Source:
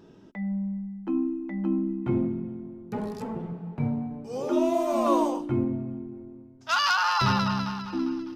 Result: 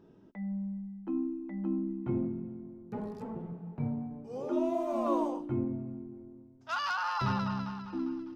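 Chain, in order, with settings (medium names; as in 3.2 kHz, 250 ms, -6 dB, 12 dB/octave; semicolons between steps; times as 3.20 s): treble shelf 2.2 kHz -10.5 dB; trim -6 dB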